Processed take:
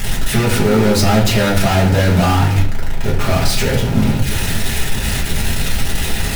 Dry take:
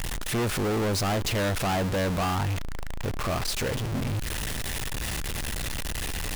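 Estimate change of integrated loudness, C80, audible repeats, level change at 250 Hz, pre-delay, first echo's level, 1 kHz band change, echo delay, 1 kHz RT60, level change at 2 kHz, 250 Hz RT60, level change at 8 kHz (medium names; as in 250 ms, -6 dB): +12.5 dB, 11.0 dB, no echo, +14.0 dB, 5 ms, no echo, +10.5 dB, no echo, 0.55 s, +11.5 dB, 0.75 s, +10.0 dB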